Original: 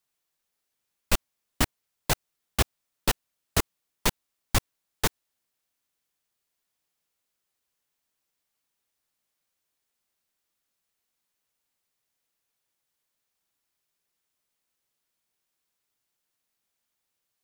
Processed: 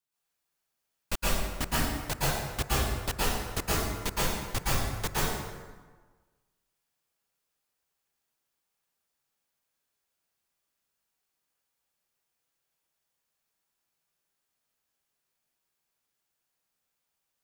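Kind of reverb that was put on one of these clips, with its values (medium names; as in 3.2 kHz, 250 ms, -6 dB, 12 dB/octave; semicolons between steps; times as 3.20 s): plate-style reverb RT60 1.4 s, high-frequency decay 0.65×, pre-delay 105 ms, DRR -9 dB; trim -9 dB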